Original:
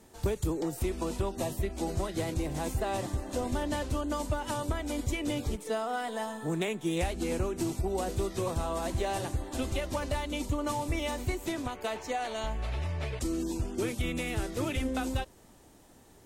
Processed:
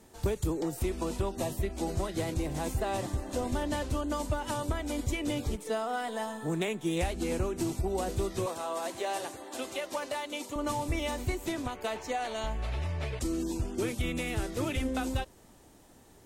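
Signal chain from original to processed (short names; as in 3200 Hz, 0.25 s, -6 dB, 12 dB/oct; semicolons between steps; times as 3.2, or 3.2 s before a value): 8.46–10.56 HPF 390 Hz 12 dB/oct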